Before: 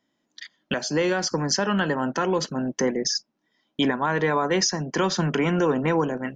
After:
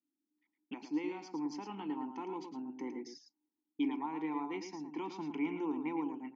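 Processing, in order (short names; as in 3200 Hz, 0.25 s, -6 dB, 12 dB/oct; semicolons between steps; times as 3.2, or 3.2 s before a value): low-pass opened by the level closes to 350 Hz, open at -23 dBFS; vowel filter u; tone controls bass -7 dB, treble +3 dB; echo 0.11 s -8 dB; gain -3.5 dB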